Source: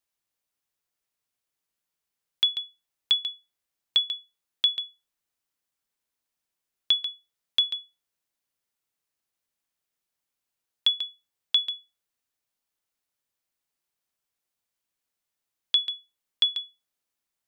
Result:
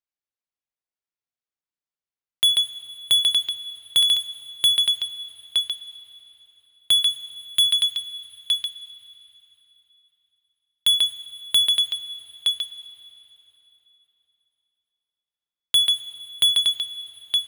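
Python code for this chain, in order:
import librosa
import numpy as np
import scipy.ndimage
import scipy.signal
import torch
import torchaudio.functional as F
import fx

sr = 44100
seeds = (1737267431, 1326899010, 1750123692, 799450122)

y = fx.air_absorb(x, sr, metres=74.0)
y = y + 10.0 ** (-12.5 / 20.0) * np.pad(y, (int(917 * sr / 1000.0), 0))[:len(y)]
y = fx.leveller(y, sr, passes=5)
y = fx.peak_eq(y, sr, hz=510.0, db=-14.0, octaves=1.1, at=(7.02, 10.94))
y = fx.rev_plate(y, sr, seeds[0], rt60_s=3.6, hf_ratio=0.9, predelay_ms=0, drr_db=13.0)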